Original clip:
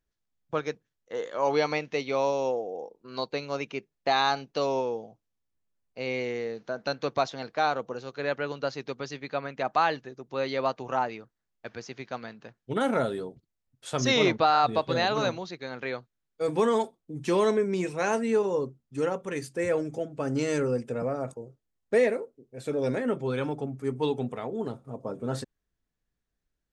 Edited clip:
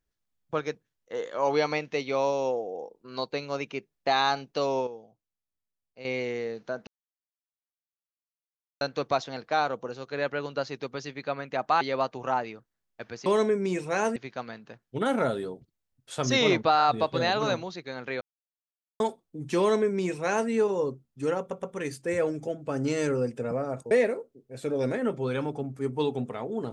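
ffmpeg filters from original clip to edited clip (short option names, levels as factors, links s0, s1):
-filter_complex "[0:a]asplit=12[s0][s1][s2][s3][s4][s5][s6][s7][s8][s9][s10][s11];[s0]atrim=end=4.872[s12];[s1]atrim=start=4.868:end=6.052,asetpts=PTS-STARTPTS,volume=0.335[s13];[s2]atrim=start=6.048:end=6.87,asetpts=PTS-STARTPTS,afade=t=out:st=0.818:d=0.004:c=hsin,apad=pad_dur=1.94[s14];[s3]atrim=start=6.87:end=9.872,asetpts=PTS-STARTPTS,afade=t=in:d=0.004:c=hsin[s15];[s4]atrim=start=10.458:end=11.912[s16];[s5]atrim=start=17.338:end=18.242[s17];[s6]atrim=start=11.908:end=15.96,asetpts=PTS-STARTPTS,afade=t=out:st=4.048:d=0.004:c=hsin[s18];[s7]atrim=start=15.96:end=16.75,asetpts=PTS-STARTPTS,volume=0[s19];[s8]atrim=start=16.75:end=19.262,asetpts=PTS-STARTPTS,afade=t=in:d=0.004:c=hsin[s20];[s9]atrim=start=19.138:end=19.262[s21];[s10]atrim=start=19.138:end=21.422[s22];[s11]atrim=start=21.938[s23];[s12][s13]acrossfade=d=0.004:c1=hsin:c2=hsin[s24];[s14][s15]concat=n=2:v=0:a=1[s25];[s24][s25]acrossfade=d=0.004:c1=hsin:c2=hsin[s26];[s26][s16]acrossfade=d=0.004:c1=hsin:c2=hsin[s27];[s27][s17]acrossfade=d=0.004:c1=hsin:c2=hsin[s28];[s18][s19][s20]concat=n=3:v=0:a=1[s29];[s28][s29]acrossfade=d=0.004:c1=hsin:c2=hsin[s30];[s30][s21]acrossfade=d=0.004:c1=hsin:c2=hsin[s31];[s31][s22]acrossfade=d=0.004:c1=hsin:c2=hsin[s32];[s32][s23]acrossfade=d=0.004:c1=hsin:c2=hsin"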